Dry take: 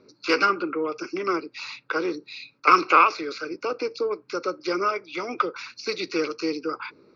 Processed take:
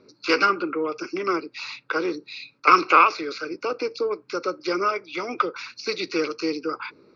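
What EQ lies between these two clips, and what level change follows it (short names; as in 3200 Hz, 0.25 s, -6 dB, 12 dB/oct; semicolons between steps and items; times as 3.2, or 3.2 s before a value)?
air absorption 67 m; high shelf 4000 Hz +5.5 dB; +1.0 dB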